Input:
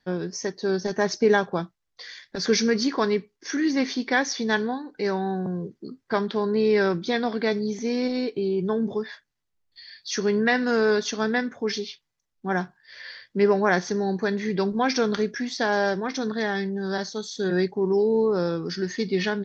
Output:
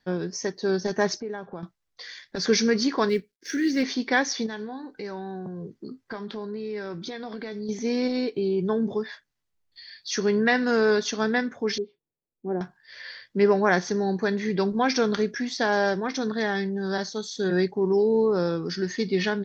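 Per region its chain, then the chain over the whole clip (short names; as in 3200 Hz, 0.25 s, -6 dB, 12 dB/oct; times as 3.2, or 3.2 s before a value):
1.2–1.63 LPF 1500 Hz 6 dB/oct + compressor 2.5:1, threshold -37 dBFS
3.09–3.83 G.711 law mismatch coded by A + band shelf 890 Hz -14.5 dB 1.1 oct
4.46–7.69 compressor 5:1, threshold -32 dBFS + doubler 19 ms -12.5 dB
11.78–12.61 synth low-pass 420 Hz, resonance Q 1.8 + tilt +2.5 dB/oct
whole clip: dry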